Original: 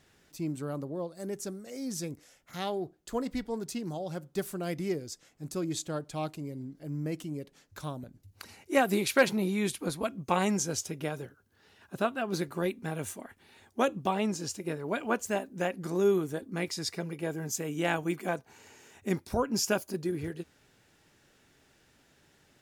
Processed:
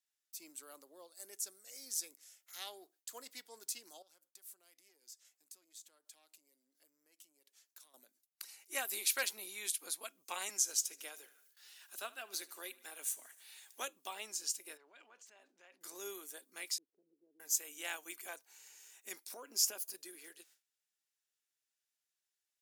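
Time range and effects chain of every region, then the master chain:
0:04.02–0:07.94: downward compressor 8 to 1, threshold −46 dBFS + tube saturation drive 35 dB, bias 0.65
0:10.49–0:13.80: Butterworth high-pass 180 Hz + repeating echo 75 ms, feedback 55%, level −20 dB + one half of a high-frequency compander encoder only
0:14.77–0:15.81: downward compressor 16 to 1, threshold −40 dBFS + transient designer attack −5 dB, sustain +8 dB + high-frequency loss of the air 150 metres
0:16.78–0:17.40: downward compressor 2.5 to 1, threshold −36 dBFS + transistor ladder low-pass 400 Hz, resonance 30%
0:19.31–0:19.90: parametric band 330 Hz +8 dB 2.4 octaves + downward compressor 10 to 1, threshold −24 dBFS + floating-point word with a short mantissa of 8 bits
whole clip: high-pass filter 270 Hz 24 dB per octave; noise gate with hold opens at −53 dBFS; first difference; level +2 dB

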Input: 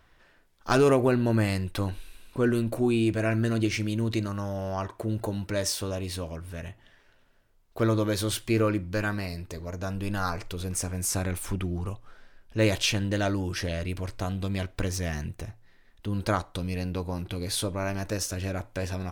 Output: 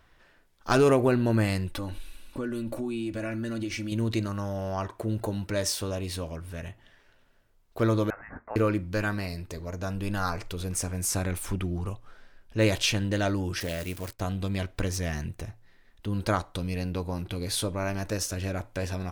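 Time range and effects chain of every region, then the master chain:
0:01.69–0:03.92: comb filter 3.5 ms, depth 57% + downward compressor 4 to 1, threshold −30 dBFS
0:08.10–0:08.56: high-pass filter 1,200 Hz 24 dB per octave + voice inversion scrambler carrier 3,100 Hz
0:13.60–0:14.20: spike at every zero crossing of −29.5 dBFS + downward expander −33 dBFS + low-shelf EQ 82 Hz −10.5 dB
whole clip: no processing

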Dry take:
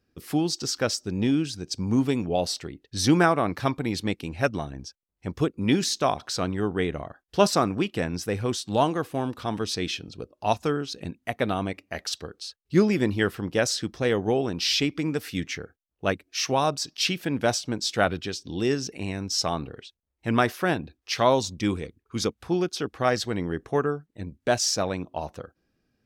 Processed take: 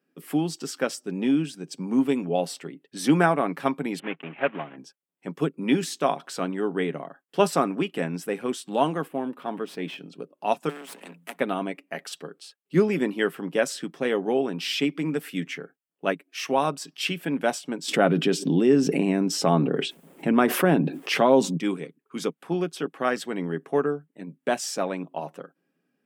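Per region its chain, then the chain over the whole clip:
0:03.99–0:04.77: one scale factor per block 3 bits + Butterworth low-pass 3,100 Hz 48 dB per octave + low-shelf EQ 340 Hz −7.5 dB
0:09.08–0:09.98: gain on one half-wave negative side −3 dB + parametric band 6,900 Hz −10 dB 1.8 octaves
0:10.69–0:11.40: gain on one half-wave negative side −12 dB + Chebyshev high-pass filter 170 Hz, order 10 + every bin compressed towards the loudest bin 2 to 1
0:17.88–0:21.57: tilt shelving filter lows +5.5 dB, about 700 Hz + envelope flattener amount 70%
whole clip: elliptic high-pass filter 160 Hz, stop band 40 dB; flat-topped bell 5,000 Hz −8.5 dB 1 octave; comb filter 7.3 ms, depth 32%

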